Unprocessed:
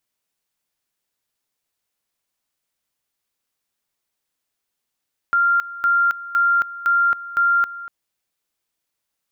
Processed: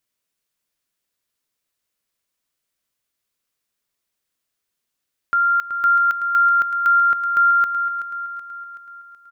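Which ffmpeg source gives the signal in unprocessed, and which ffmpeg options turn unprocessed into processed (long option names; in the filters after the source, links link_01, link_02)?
-f lavfi -i "aevalsrc='pow(10,(-13.5-16.5*gte(mod(t,0.51),0.27))/20)*sin(2*PI*1390*t)':duration=2.55:sample_rate=44100"
-af "equalizer=frequency=820:width=4.8:gain=-6.5,aecho=1:1:377|754|1131|1508|1885|2262:0.282|0.149|0.0792|0.042|0.0222|0.0118"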